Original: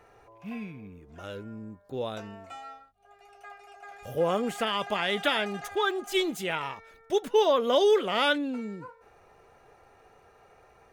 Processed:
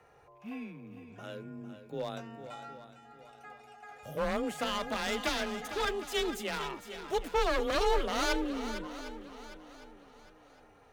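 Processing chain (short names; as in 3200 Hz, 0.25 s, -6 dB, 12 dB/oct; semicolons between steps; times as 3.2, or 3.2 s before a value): one-sided fold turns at -25 dBFS; swung echo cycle 0.757 s, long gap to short 1.5:1, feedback 33%, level -11 dB; frequency shift +24 Hz; gain -4 dB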